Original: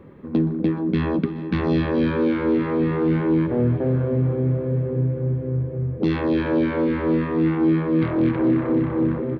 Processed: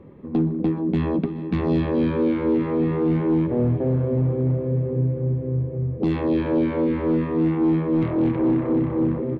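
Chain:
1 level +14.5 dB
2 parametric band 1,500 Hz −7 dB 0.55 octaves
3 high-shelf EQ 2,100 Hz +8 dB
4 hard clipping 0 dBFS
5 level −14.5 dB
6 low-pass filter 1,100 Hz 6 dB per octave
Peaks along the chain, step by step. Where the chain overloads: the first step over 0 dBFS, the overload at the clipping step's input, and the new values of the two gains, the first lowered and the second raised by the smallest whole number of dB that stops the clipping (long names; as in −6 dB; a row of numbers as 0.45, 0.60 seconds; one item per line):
+5.5, +5.0, +5.5, 0.0, −14.5, −14.5 dBFS
step 1, 5.5 dB
step 1 +8.5 dB, step 5 −8.5 dB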